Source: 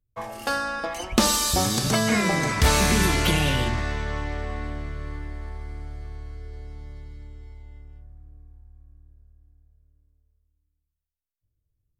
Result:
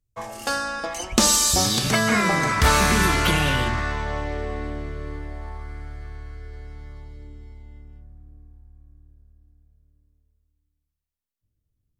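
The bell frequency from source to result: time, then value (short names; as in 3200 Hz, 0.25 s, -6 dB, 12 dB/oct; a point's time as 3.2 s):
bell +7.5 dB 1 oct
1.54 s 7000 Hz
2.08 s 1300 Hz
3.86 s 1300 Hz
4.39 s 410 Hz
5.13 s 410 Hz
5.77 s 1600 Hz
6.87 s 1600 Hz
7.38 s 230 Hz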